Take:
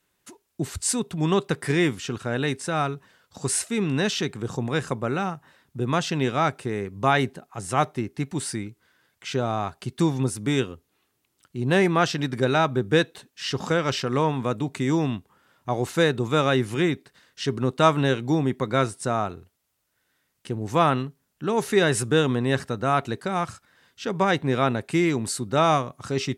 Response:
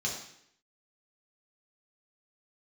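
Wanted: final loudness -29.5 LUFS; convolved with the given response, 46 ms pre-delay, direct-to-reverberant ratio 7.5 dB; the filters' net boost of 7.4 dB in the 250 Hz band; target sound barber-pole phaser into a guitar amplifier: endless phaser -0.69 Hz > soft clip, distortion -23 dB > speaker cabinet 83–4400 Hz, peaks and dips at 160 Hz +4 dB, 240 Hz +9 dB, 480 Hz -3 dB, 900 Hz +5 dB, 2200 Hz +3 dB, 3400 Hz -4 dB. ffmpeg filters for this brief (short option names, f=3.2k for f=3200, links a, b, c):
-filter_complex "[0:a]equalizer=f=250:t=o:g=3.5,asplit=2[a][b];[1:a]atrim=start_sample=2205,adelay=46[c];[b][c]afir=irnorm=-1:irlink=0,volume=-12.5dB[d];[a][d]amix=inputs=2:normalize=0,asplit=2[e][f];[f]afreqshift=-0.69[g];[e][g]amix=inputs=2:normalize=1,asoftclip=threshold=-11dB,highpass=83,equalizer=f=160:t=q:w=4:g=4,equalizer=f=240:t=q:w=4:g=9,equalizer=f=480:t=q:w=4:g=-3,equalizer=f=900:t=q:w=4:g=5,equalizer=f=2.2k:t=q:w=4:g=3,equalizer=f=3.4k:t=q:w=4:g=-4,lowpass=f=4.4k:w=0.5412,lowpass=f=4.4k:w=1.3066,volume=-6dB"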